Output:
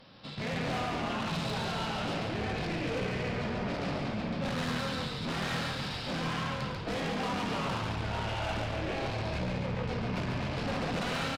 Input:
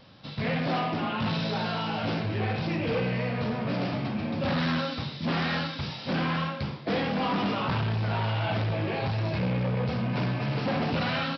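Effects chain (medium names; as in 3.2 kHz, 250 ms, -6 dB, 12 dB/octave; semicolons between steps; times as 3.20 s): peaking EQ 85 Hz -6.5 dB 1.4 oct; valve stage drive 32 dB, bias 0.35; on a send: frequency-shifting echo 141 ms, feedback 55%, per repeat -37 Hz, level -4 dB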